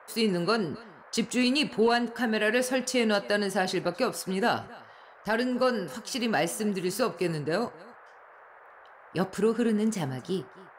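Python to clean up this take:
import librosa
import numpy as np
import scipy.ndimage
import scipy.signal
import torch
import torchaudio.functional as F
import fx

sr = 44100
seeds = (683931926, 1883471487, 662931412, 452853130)

y = fx.noise_reduce(x, sr, print_start_s=8.11, print_end_s=8.61, reduce_db=21.0)
y = fx.fix_echo_inverse(y, sr, delay_ms=267, level_db=-22.0)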